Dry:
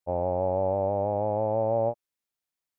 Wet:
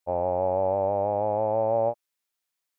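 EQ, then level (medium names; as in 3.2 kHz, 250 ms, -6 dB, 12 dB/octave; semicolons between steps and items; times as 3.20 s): bass shelf 480 Hz -9.5 dB; +5.5 dB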